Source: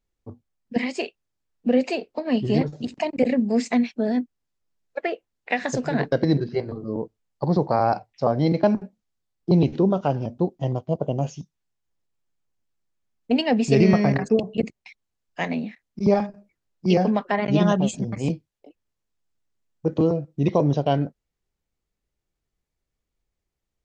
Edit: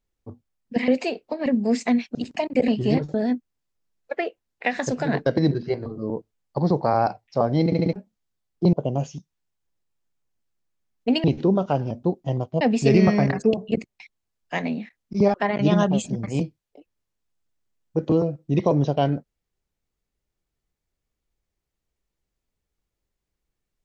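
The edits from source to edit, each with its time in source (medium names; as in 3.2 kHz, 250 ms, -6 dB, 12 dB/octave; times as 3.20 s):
0.88–1.74 s: delete
2.32–2.78 s: swap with 3.31–4.00 s
8.51 s: stutter in place 0.07 s, 4 plays
9.59–10.96 s: move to 13.47 s
16.20–17.23 s: delete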